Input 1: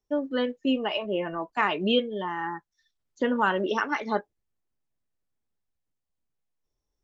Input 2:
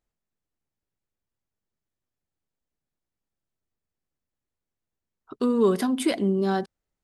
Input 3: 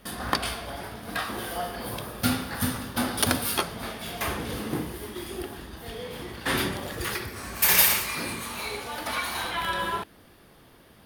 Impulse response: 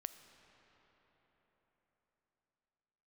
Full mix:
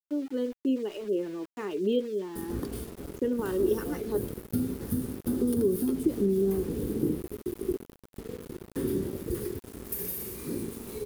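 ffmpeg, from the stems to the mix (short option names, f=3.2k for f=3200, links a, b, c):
-filter_complex "[0:a]aemphasis=mode=production:type=riaa,volume=1dB[a];[1:a]aeval=exprs='val(0)+0.00631*(sin(2*PI*60*n/s)+sin(2*PI*2*60*n/s)/2+sin(2*PI*3*60*n/s)/3+sin(2*PI*4*60*n/s)/4+sin(2*PI*5*60*n/s)/5)':c=same,volume=-2dB[b];[2:a]acontrast=80,adelay=2300,volume=-6dB[c];[b][c]amix=inputs=2:normalize=0,acrusher=bits=4:mix=0:aa=0.5,acompressor=threshold=-25dB:ratio=6,volume=0dB[d];[a][d]amix=inputs=2:normalize=0,firequalizer=gain_entry='entry(110,0);entry(410,7);entry(640,-17);entry(2300,-23);entry(11000,-6)':delay=0.05:min_phase=1,aeval=exprs='val(0)*gte(abs(val(0)),0.00562)':c=same"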